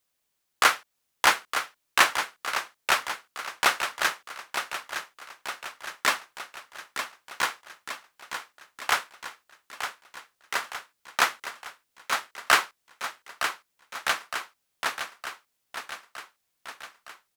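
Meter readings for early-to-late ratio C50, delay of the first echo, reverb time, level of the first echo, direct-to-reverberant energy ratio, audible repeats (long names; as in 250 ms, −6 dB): no reverb audible, 913 ms, no reverb audible, −8.5 dB, no reverb audible, 6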